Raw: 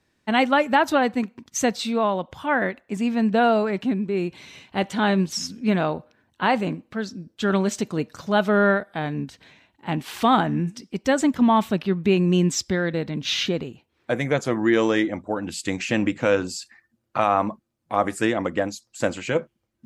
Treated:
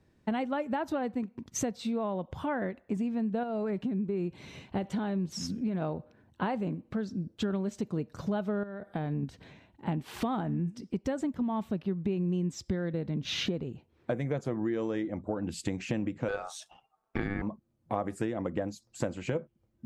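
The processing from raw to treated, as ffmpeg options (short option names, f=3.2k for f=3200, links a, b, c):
-filter_complex "[0:a]asettb=1/sr,asplit=3[a][b][c];[a]atrim=end=3.434[d];[b]atrim=start=3.43:end=5.82,asetpts=PTS-STARTPTS,afade=t=in:d=0.004:c=qsin,afade=t=out:st=2.386:d=0.004:c=qsin,acompressor=threshold=-20dB:ratio=6:attack=3.2:release=140:knee=1:detection=peak[e];[c]atrim=start=5.816[f];[d][e]acrossfade=d=0.004:c1=hsin:c2=qsin[g];[g][f]acrossfade=d=0.004:c1=qsin:c2=hsin,asettb=1/sr,asplit=3[h][i][j];[h]atrim=end=8.634[k];[i]atrim=start=8.63:end=9.23,asetpts=PTS-STARTPTS,afade=t=in:d=0.004:c=qsin,afade=t=out:st=0.596:d=0.004:c=qsin,acompressor=threshold=-27dB:ratio=6:attack=3.2:release=140:knee=1:detection=peak[l];[j]atrim=start=9.226[m];[k][l]acrossfade=d=0.004:c1=hsin:c2=qsin[n];[n][m]acrossfade=d=0.004:c1=qsin:c2=hsin,asettb=1/sr,asplit=3[o][p][q];[o]atrim=end=16.284[r];[p]atrim=start=16.28:end=17.42,asetpts=PTS-STARTPTS,afade=t=in:d=0.004:c=qsin,afade=t=out:st=1.136:d=0.004:c=qsin,aeval=exprs='val(0)*sin(2*PI*1000*n/s)':c=same[s];[q]atrim=start=17.416[t];[r][s]acrossfade=d=0.004:c1=hsin:c2=qsin[u];[u][t]acrossfade=d=0.004:c1=qsin:c2=hsin,tiltshelf=f=760:g=7.5,acompressor=threshold=-28dB:ratio=6,equalizer=f=270:t=o:w=0.73:g=-3"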